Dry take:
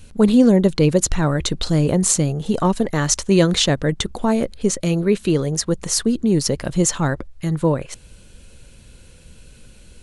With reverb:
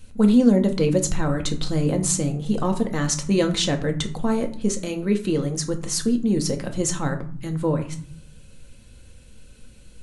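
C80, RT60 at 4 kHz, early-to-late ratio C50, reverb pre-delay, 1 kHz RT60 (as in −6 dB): 17.0 dB, 0.30 s, 12.5 dB, 4 ms, 0.55 s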